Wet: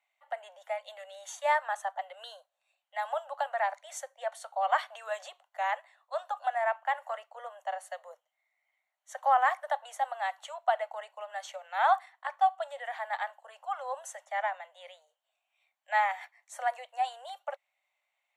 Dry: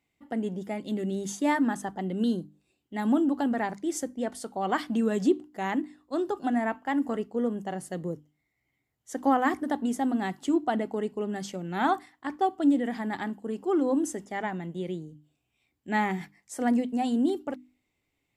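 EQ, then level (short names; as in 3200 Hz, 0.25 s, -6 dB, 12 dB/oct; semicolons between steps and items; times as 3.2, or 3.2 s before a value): steep high-pass 570 Hz 96 dB/oct; Butterworth band-stop 5000 Hz, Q 6.7; high shelf 4400 Hz -11 dB; +2.5 dB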